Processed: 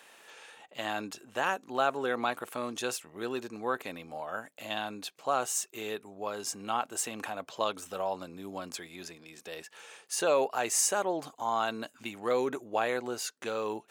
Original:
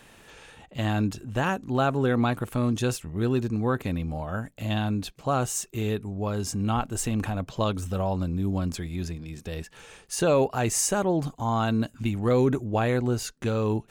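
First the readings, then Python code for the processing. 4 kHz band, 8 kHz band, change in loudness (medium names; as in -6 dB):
-1.5 dB, -1.5 dB, -6.0 dB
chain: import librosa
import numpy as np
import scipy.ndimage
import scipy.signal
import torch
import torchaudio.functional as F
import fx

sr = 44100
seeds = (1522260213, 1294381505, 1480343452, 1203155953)

y = scipy.signal.sosfilt(scipy.signal.butter(2, 510.0, 'highpass', fs=sr, output='sos'), x)
y = F.gain(torch.from_numpy(y), -1.5).numpy()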